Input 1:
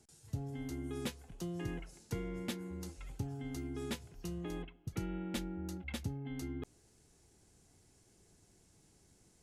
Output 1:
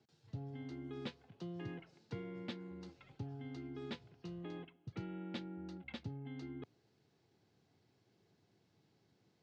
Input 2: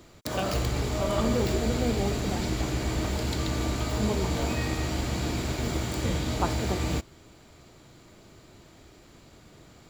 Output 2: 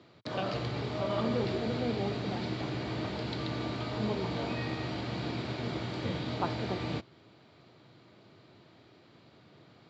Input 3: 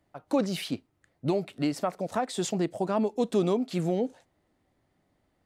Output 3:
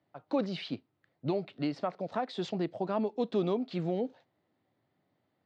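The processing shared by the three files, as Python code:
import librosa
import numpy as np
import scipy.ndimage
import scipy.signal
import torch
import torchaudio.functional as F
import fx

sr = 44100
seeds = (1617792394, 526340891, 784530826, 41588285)

y = scipy.signal.sosfilt(scipy.signal.cheby1(3, 1.0, [110.0, 4300.0], 'bandpass', fs=sr, output='sos'), x)
y = F.gain(torch.from_numpy(y), -4.0).numpy()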